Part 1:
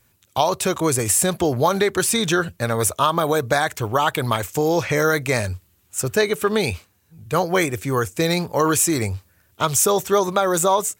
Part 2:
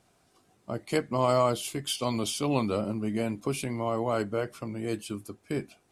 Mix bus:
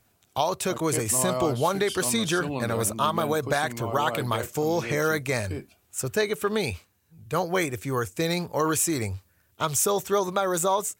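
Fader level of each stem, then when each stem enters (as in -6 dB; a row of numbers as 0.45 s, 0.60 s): -6.0 dB, -4.5 dB; 0.00 s, 0.00 s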